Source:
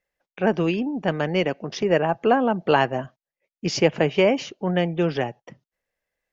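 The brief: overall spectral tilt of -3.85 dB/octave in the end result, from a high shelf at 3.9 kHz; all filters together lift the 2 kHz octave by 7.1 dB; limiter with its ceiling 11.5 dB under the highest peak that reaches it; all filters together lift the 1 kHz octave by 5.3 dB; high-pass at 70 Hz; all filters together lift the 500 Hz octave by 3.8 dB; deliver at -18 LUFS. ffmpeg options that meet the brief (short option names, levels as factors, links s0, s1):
-af "highpass=70,equalizer=f=500:t=o:g=3,equalizer=f=1000:t=o:g=4.5,equalizer=f=2000:t=o:g=6.5,highshelf=f=3900:g=3.5,volume=1.68,alimiter=limit=0.501:level=0:latency=1"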